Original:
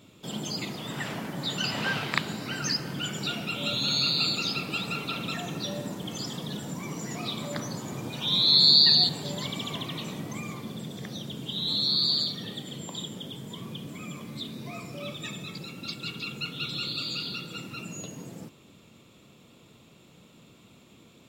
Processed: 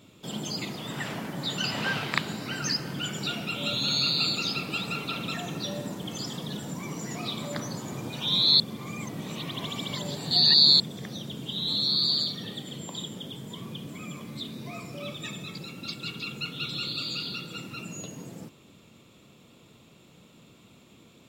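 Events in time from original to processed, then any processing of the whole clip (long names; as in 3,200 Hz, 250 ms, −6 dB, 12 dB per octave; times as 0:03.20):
0:08.60–0:10.80: reverse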